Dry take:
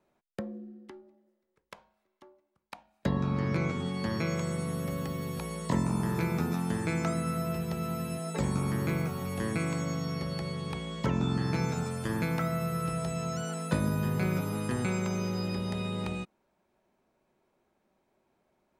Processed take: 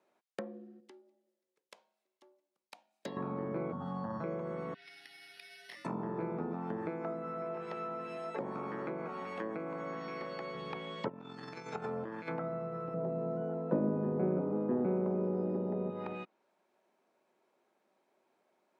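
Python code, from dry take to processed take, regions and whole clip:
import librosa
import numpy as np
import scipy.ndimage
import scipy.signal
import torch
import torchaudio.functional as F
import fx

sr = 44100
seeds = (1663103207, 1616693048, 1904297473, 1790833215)

y = fx.chain(x, sr, fx.highpass(hz=430.0, slope=6),
    fx.peak_eq(hz=1300.0, db=-11.5, octaves=2.1), at=(0.8, 3.17))
y = fx.chain(y, sr, fx.low_shelf(hz=170.0, db=8.0),
    fx.fixed_phaser(hz=950.0, stages=4),
    fx.env_flatten(amount_pct=100), at=(3.72, 4.24))
y = fx.chain(y, sr, fx.ellip_highpass(hz=1900.0, order=4, stop_db=40),
    fx.tilt_eq(slope=-2.5),
    fx.resample_bad(factor=6, down='none', up='hold'), at=(4.74, 5.85))
y = fx.chain(y, sr, fx.low_shelf(hz=170.0, db=-10.5),
    fx.echo_single(ms=524, db=-14.0), at=(6.89, 10.55))
y = fx.chain(y, sr, fx.hum_notches(base_hz=50, count=8),
    fx.over_compress(threshold_db=-35.0, ratio=-0.5), at=(11.08, 12.28))
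y = fx.chain(y, sr, fx.law_mismatch(coded='mu'),
    fx.highpass(hz=190.0, slope=12),
    fx.tilt_shelf(db=9.5, hz=810.0), at=(12.94, 15.9))
y = scipy.signal.sosfilt(scipy.signal.butter(2, 330.0, 'highpass', fs=sr, output='sos'), y)
y = fx.env_lowpass_down(y, sr, base_hz=800.0, full_db=-32.5)
y = fx.high_shelf(y, sr, hz=12000.0, db=-9.0)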